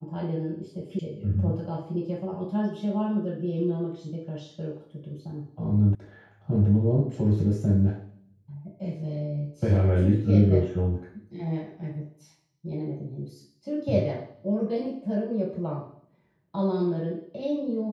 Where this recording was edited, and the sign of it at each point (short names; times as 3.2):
0.99 sound cut off
5.95 sound cut off